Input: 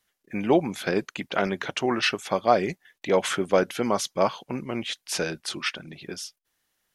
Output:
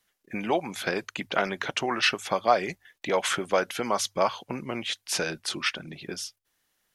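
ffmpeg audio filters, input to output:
ffmpeg -i in.wav -filter_complex "[0:a]bandreject=frequency=50:width_type=h:width=6,bandreject=frequency=100:width_type=h:width=6,acrossover=split=600[link_01][link_02];[link_01]acompressor=threshold=-32dB:ratio=6[link_03];[link_03][link_02]amix=inputs=2:normalize=0,volume=1dB" out.wav

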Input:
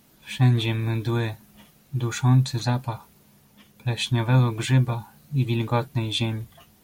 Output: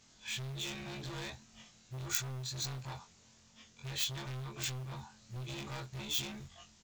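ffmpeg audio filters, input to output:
ffmpeg -i in.wav -filter_complex "[0:a]afftfilt=real='re':imag='-im':win_size=2048:overlap=0.75,acompressor=threshold=-26dB:ratio=8,aresample=16000,asoftclip=type=tanh:threshold=-36.5dB,aresample=44100,aeval=exprs='0.0266*(cos(1*acos(clip(val(0)/0.0266,-1,1)))-cos(1*PI/2))+0.0119*(cos(3*acos(clip(val(0)/0.0266,-1,1)))-cos(3*PI/2))+0.00596*(cos(5*acos(clip(val(0)/0.0266,-1,1)))-cos(5*PI/2))+0.00015*(cos(6*acos(clip(val(0)/0.0266,-1,1)))-cos(6*PI/2))+0.0015*(cos(7*acos(clip(val(0)/0.0266,-1,1)))-cos(7*PI/2))':channel_layout=same,acrossover=split=220[link_01][link_02];[link_01]acrusher=bits=4:mode=log:mix=0:aa=0.000001[link_03];[link_02]aemphasis=mode=production:type=riaa[link_04];[link_03][link_04]amix=inputs=2:normalize=0,volume=6dB" out.wav

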